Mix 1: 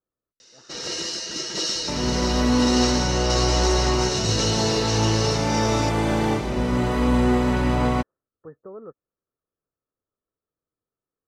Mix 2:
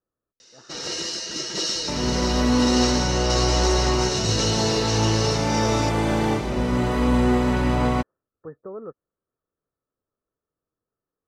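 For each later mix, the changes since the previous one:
speech +3.5 dB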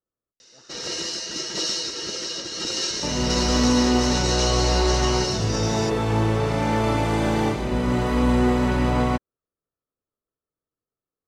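speech -5.0 dB; second sound: entry +1.15 s

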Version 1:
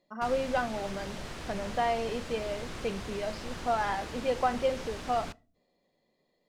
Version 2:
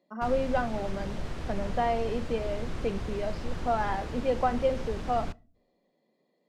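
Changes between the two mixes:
speech: add HPF 180 Hz 24 dB/oct; master: add tilt -2 dB/oct

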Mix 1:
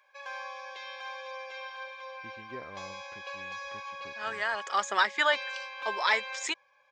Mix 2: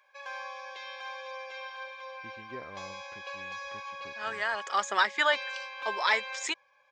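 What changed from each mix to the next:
none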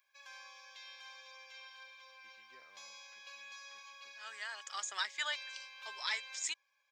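master: add differentiator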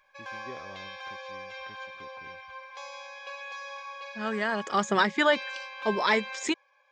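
first voice: entry -2.05 s; second voice: remove HPF 780 Hz 12 dB/oct; master: remove differentiator

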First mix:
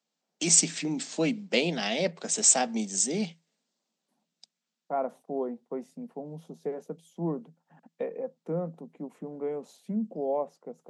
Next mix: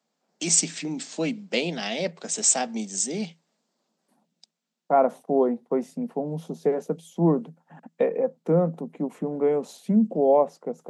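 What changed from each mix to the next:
second voice +10.5 dB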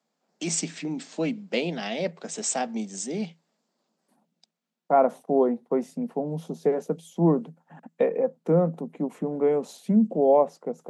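first voice: add high shelf 3900 Hz -10.5 dB

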